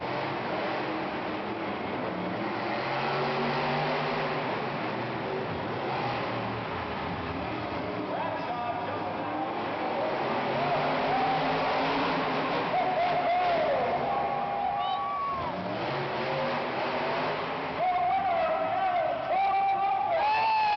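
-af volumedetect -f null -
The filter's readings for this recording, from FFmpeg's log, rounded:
mean_volume: -29.0 dB
max_volume: -21.6 dB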